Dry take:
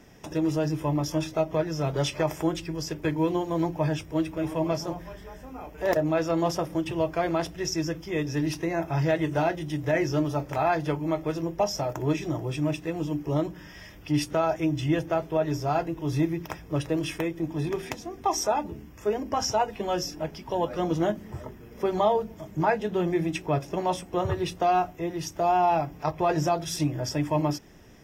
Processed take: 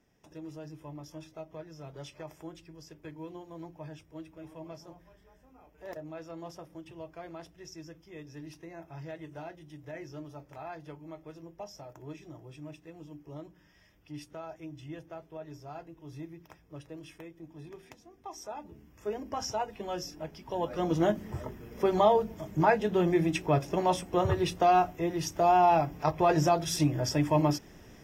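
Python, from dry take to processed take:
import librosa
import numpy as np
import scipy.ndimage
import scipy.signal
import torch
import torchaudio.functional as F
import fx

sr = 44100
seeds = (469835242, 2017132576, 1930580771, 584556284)

y = fx.gain(x, sr, db=fx.line((18.35, -18.0), (19.1, -8.0), (20.34, -8.0), (21.12, 0.0)))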